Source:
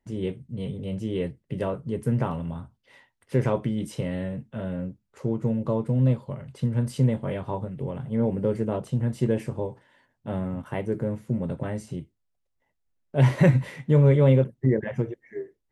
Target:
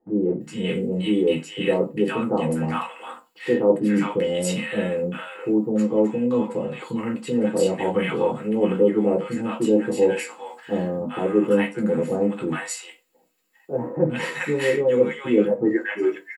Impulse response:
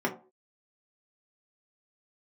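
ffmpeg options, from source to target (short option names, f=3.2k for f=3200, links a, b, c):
-filter_complex "[0:a]areverse,acompressor=threshold=-33dB:ratio=4,areverse,acrossover=split=920[a][b];[b]adelay=390[c];[a][c]amix=inputs=2:normalize=0,asetrate=42336,aresample=44100[d];[1:a]atrim=start_sample=2205,asetrate=57330,aresample=44100[e];[d][e]afir=irnorm=-1:irlink=0,crystalizer=i=9:c=0,volume=4dB"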